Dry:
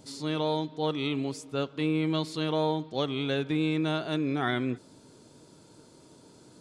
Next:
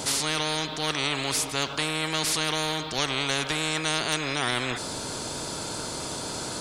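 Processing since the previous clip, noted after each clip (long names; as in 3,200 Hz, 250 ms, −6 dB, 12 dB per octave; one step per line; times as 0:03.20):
every bin compressed towards the loudest bin 4 to 1
level +5.5 dB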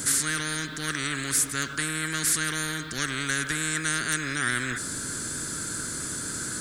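drawn EQ curve 290 Hz 0 dB, 840 Hz −18 dB, 1,600 Hz +8 dB, 2,600 Hz −8 dB, 5,200 Hz −4 dB, 7,700 Hz +6 dB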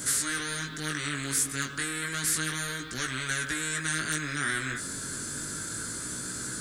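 chorus effect 0.31 Hz, delay 16 ms, depth 6.2 ms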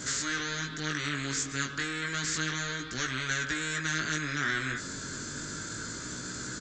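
downsampling to 16,000 Hz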